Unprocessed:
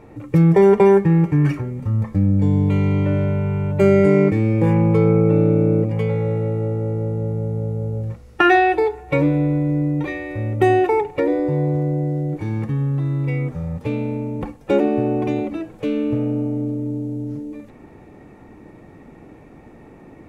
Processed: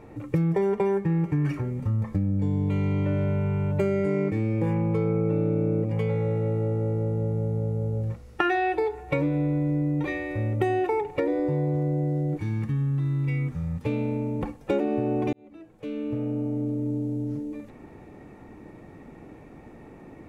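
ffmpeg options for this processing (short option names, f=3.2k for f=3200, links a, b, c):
-filter_complex "[0:a]asettb=1/sr,asplit=3[a][b][c];[a]atrim=end=12.384[d];[b]atrim=start=12.38:end=13.85,asetpts=PTS-STARTPTS,afade=t=in:d=0.004:c=qsin,afade=t=out:st=1.466:d=0.004:c=qsin,equalizer=f=580:w=1:g=-11[e];[c]atrim=start=13.846[f];[d][e]acrossfade=d=0.004:c1=hsin:c2=qsin[g];[g][f]acrossfade=d=0.004:c1=qsin:c2=hsin,asplit=2[h][i];[h]atrim=end=15.33,asetpts=PTS-STARTPTS,afade=t=out:st=15.326:d=0.004:c=hsin[j];[i]atrim=start=15.33,asetpts=PTS-STARTPTS,afade=t=in:d=1.61[k];[j][k]concat=n=2:v=0:a=1,acompressor=threshold=-19dB:ratio=5,volume=-2.5dB"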